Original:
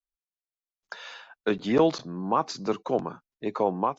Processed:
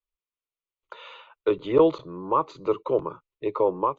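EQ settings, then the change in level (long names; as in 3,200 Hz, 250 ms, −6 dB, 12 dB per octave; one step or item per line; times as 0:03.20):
dynamic equaliser 2,400 Hz, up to −7 dB, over −45 dBFS, Q 1.2
high-frequency loss of the air 150 metres
phaser with its sweep stopped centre 1,100 Hz, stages 8
+5.5 dB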